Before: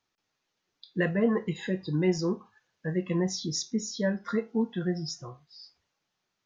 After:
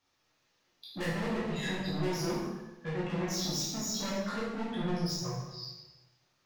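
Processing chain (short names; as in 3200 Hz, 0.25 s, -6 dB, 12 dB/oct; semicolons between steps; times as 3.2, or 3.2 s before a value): 2.28–4.44 HPF 79 Hz 24 dB/oct; soft clip -38 dBFS, distortion -3 dB; reverb RT60 1.0 s, pre-delay 8 ms, DRR -6.5 dB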